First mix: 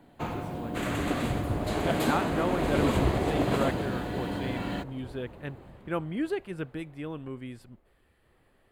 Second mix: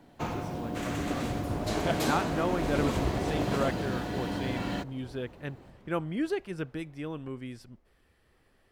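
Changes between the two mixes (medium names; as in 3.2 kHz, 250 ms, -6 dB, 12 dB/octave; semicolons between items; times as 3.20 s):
second sound -4.5 dB; master: add peaking EQ 5.6 kHz +11.5 dB 0.41 oct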